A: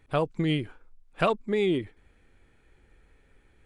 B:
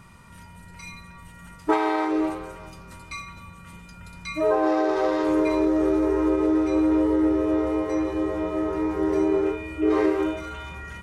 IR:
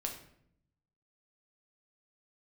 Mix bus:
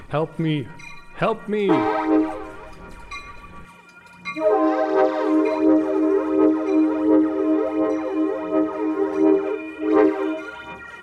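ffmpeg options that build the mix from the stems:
-filter_complex "[0:a]acompressor=mode=upward:threshold=-33dB:ratio=2.5,volume=2.5dB,asplit=2[link_01][link_02];[link_02]volume=-13.5dB[link_03];[1:a]highpass=260,aphaser=in_gain=1:out_gain=1:delay=3:decay=0.59:speed=1.4:type=sinusoidal,volume=1.5dB[link_04];[2:a]atrim=start_sample=2205[link_05];[link_03][link_05]afir=irnorm=-1:irlink=0[link_06];[link_01][link_04][link_06]amix=inputs=3:normalize=0,highshelf=frequency=4100:gain=-9.5,asoftclip=type=tanh:threshold=-4dB"

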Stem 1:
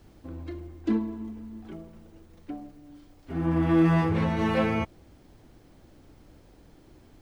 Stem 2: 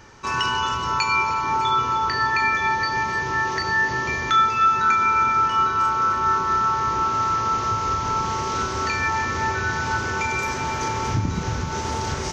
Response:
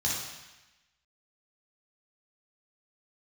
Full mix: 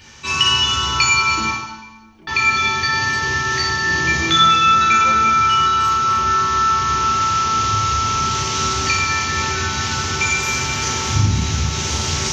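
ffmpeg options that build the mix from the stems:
-filter_complex "[0:a]adelay=500,volume=-6.5dB[link_01];[1:a]highshelf=frequency=2900:gain=10.5,volume=-2.5dB,asplit=3[link_02][link_03][link_04];[link_02]atrim=end=1.51,asetpts=PTS-STARTPTS,afade=type=out:start_time=1.506:duration=0.004:curve=hsin[link_05];[link_03]atrim=start=1.51:end=2.27,asetpts=PTS-STARTPTS,volume=0[link_06];[link_04]atrim=start=2.27,asetpts=PTS-STARTPTS,afade=type=in:duration=0.004:curve=hsin[link_07];[link_05][link_06][link_07]concat=n=3:v=0:a=1,asplit=2[link_08][link_09];[link_09]volume=-5.5dB[link_10];[2:a]atrim=start_sample=2205[link_11];[link_10][link_11]afir=irnorm=-1:irlink=0[link_12];[link_01][link_08][link_12]amix=inputs=3:normalize=0,equalizer=frequency=3100:width=1.1:gain=4"

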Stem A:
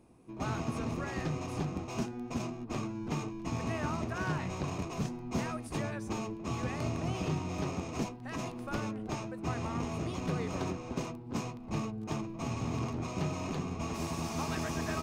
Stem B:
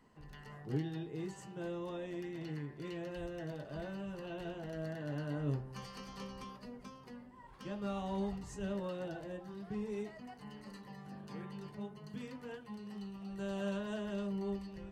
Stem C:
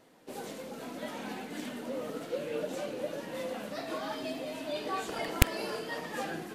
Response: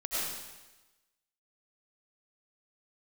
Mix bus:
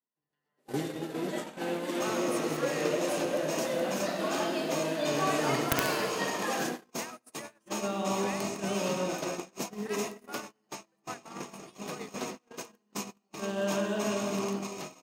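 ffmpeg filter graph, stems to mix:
-filter_complex "[0:a]aemphasis=mode=production:type=bsi,adelay=1600,volume=1.5dB,asplit=2[link_01][link_02];[link_02]volume=-16dB[link_03];[1:a]dynaudnorm=framelen=160:gausssize=9:maxgain=3.5dB,volume=0.5dB,asplit=2[link_04][link_05];[link_05]volume=-5.5dB[link_06];[2:a]adelay=300,volume=2dB,asplit=3[link_07][link_08][link_09];[link_08]volume=-15dB[link_10];[link_09]volume=-7dB[link_11];[3:a]atrim=start_sample=2205[link_12];[link_03][link_06][link_10]amix=inputs=3:normalize=0[link_13];[link_13][link_12]afir=irnorm=-1:irlink=0[link_14];[link_11]aecho=0:1:68|136|204|272:1|0.31|0.0961|0.0298[link_15];[link_01][link_04][link_07][link_14][link_15]amix=inputs=5:normalize=0,highpass=220,agate=range=-35dB:threshold=-33dB:ratio=16:detection=peak,aeval=exprs='(mod(4.47*val(0)+1,2)-1)/4.47':channel_layout=same"

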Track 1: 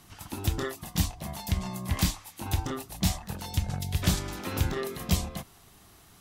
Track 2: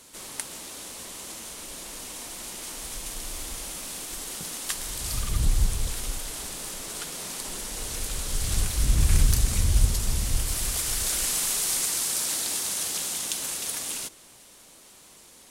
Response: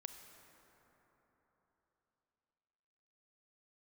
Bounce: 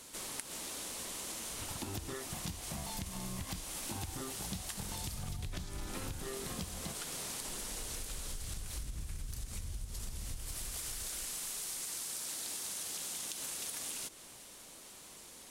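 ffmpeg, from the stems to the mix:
-filter_complex "[0:a]highshelf=frequency=6500:gain=-11.5,acompressor=threshold=-33dB:ratio=4,bass=frequency=250:gain=1,treble=frequency=4000:gain=6,adelay=1500,volume=2.5dB[link_01];[1:a]acompressor=threshold=-28dB:ratio=6,volume=-1.5dB[link_02];[link_01][link_02]amix=inputs=2:normalize=0,acompressor=threshold=-38dB:ratio=6"

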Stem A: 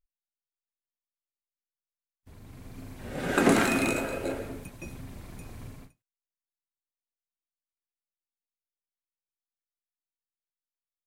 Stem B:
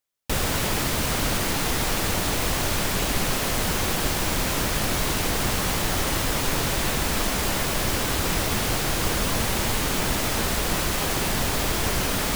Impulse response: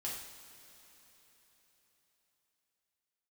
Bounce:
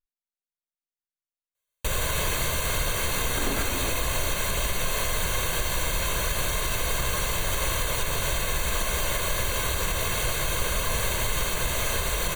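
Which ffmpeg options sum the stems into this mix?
-filter_complex "[0:a]volume=-8.5dB[link_01];[1:a]equalizer=frequency=250:width_type=o:width=2.4:gain=-4.5,aecho=1:1:1.9:0.59,adelay=1550,volume=-5dB,asplit=2[link_02][link_03];[link_03]volume=-4.5dB[link_04];[2:a]atrim=start_sample=2205[link_05];[link_04][link_05]afir=irnorm=-1:irlink=0[link_06];[link_01][link_02][link_06]amix=inputs=3:normalize=0,asuperstop=centerf=5200:order=8:qfactor=5,alimiter=limit=-15.5dB:level=0:latency=1:release=75"

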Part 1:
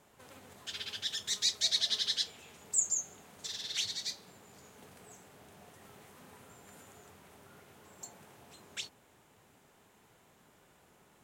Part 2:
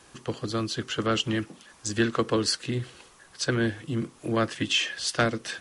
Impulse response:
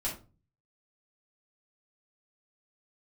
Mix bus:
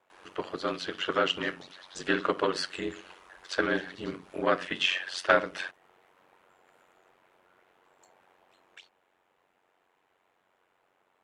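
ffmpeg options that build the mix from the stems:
-filter_complex "[0:a]acompressor=threshold=-39dB:ratio=6,volume=-1dB[link_01];[1:a]aecho=1:1:5:0.74,adelay=100,volume=2.5dB,asplit=2[link_02][link_03];[link_03]volume=-14dB[link_04];[2:a]atrim=start_sample=2205[link_05];[link_04][link_05]afir=irnorm=-1:irlink=0[link_06];[link_01][link_02][link_06]amix=inputs=3:normalize=0,acrossover=split=380 3300:gain=0.141 1 0.158[link_07][link_08][link_09];[link_07][link_08][link_09]amix=inputs=3:normalize=0,aeval=exprs='val(0)*sin(2*PI*46*n/s)':channel_layout=same"

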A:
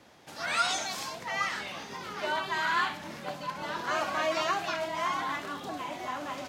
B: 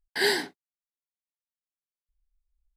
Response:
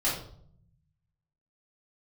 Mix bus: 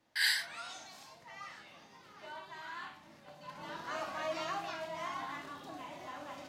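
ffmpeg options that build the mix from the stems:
-filter_complex "[0:a]volume=-12.5dB,afade=type=in:start_time=3.34:duration=0.24:silence=0.421697,asplit=2[link_01][link_02];[link_02]volume=-11.5dB[link_03];[1:a]highpass=frequency=1300:width=0.5412,highpass=frequency=1300:width=1.3066,volume=-3.5dB[link_04];[2:a]atrim=start_sample=2205[link_05];[link_03][link_05]afir=irnorm=-1:irlink=0[link_06];[link_01][link_04][link_06]amix=inputs=3:normalize=0"

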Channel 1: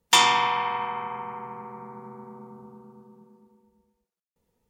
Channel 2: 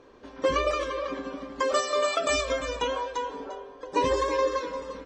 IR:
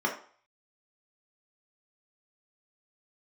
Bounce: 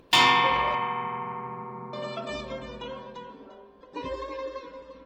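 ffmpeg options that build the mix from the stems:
-filter_complex "[0:a]bandreject=frequency=388.7:width_type=h:width=4,bandreject=frequency=777.4:width_type=h:width=4,bandreject=frequency=1166.1:width_type=h:width=4,bandreject=frequency=1554.8:width_type=h:width=4,bandreject=frequency=1943.5:width_type=h:width=4,bandreject=frequency=2332.2:width_type=h:width=4,bandreject=frequency=2720.9:width_type=h:width=4,bandreject=frequency=3109.6:width_type=h:width=4,bandreject=frequency=3498.3:width_type=h:width=4,bandreject=frequency=3887:width_type=h:width=4,bandreject=frequency=4275.7:width_type=h:width=4,bandreject=frequency=4664.4:width_type=h:width=4,bandreject=frequency=5053.1:width_type=h:width=4,bandreject=frequency=5441.8:width_type=h:width=4,bandreject=frequency=5830.5:width_type=h:width=4,bandreject=frequency=6219.2:width_type=h:width=4,bandreject=frequency=6607.9:width_type=h:width=4,bandreject=frequency=6996.6:width_type=h:width=4,volume=14dB,asoftclip=hard,volume=-14dB,volume=2.5dB,asplit=2[link_01][link_02];[link_02]volume=-12.5dB[link_03];[1:a]volume=-9dB,asplit=3[link_04][link_05][link_06];[link_04]atrim=end=0.75,asetpts=PTS-STARTPTS,afade=type=out:start_time=0.746:duration=0.004:curve=hsin[link_07];[link_05]atrim=start=0.75:end=1.93,asetpts=PTS-STARTPTS,volume=0[link_08];[link_06]atrim=start=1.93,asetpts=PTS-STARTPTS,afade=type=in:duration=0.004:curve=hsin[link_09];[link_07][link_08][link_09]concat=n=3:v=0:a=1,asplit=2[link_10][link_11];[link_11]volume=-15.5dB[link_12];[2:a]atrim=start_sample=2205[link_13];[link_03][link_12]amix=inputs=2:normalize=0[link_14];[link_14][link_13]afir=irnorm=-1:irlink=0[link_15];[link_01][link_10][link_15]amix=inputs=3:normalize=0,highshelf=frequency=5000:width_type=q:width=1.5:gain=-8.5,acompressor=mode=upward:threshold=-49dB:ratio=2.5"

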